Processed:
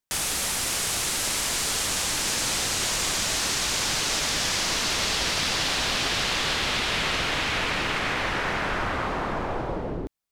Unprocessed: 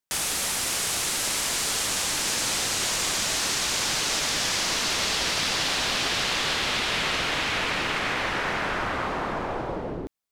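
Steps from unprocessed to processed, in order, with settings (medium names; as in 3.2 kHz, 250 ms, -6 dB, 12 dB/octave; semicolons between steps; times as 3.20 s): bass shelf 110 Hz +6.5 dB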